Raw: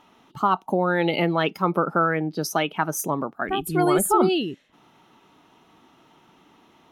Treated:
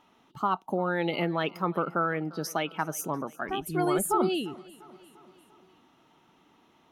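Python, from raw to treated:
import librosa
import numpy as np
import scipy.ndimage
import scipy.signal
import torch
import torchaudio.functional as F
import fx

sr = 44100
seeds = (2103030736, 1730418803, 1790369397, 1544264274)

y = fx.echo_feedback(x, sr, ms=347, feedback_pct=58, wet_db=-22.0)
y = y * 10.0 ** (-6.5 / 20.0)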